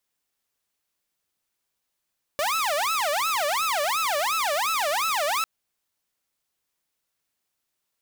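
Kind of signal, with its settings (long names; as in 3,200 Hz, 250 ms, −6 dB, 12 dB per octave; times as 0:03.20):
siren wail 574–1,320 Hz 2.8 per second saw −20 dBFS 3.05 s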